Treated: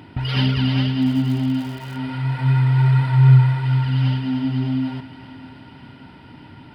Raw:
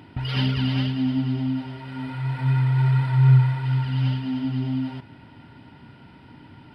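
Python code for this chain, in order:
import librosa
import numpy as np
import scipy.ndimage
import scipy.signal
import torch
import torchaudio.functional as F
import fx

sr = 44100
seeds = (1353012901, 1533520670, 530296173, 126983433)

y = fx.echo_thinned(x, sr, ms=586, feedback_pct=67, hz=350.0, wet_db=-15)
y = fx.dmg_crackle(y, sr, seeds[0], per_s=250.0, level_db=-36.0, at=(1.01, 1.96), fade=0.02)
y = y * librosa.db_to_amplitude(4.0)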